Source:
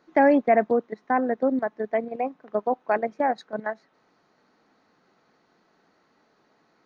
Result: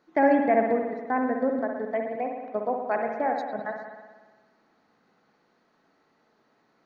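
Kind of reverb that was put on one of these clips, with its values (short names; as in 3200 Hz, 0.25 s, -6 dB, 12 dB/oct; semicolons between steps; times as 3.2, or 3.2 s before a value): spring tank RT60 1.4 s, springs 58 ms, chirp 55 ms, DRR 2.5 dB; gain -4 dB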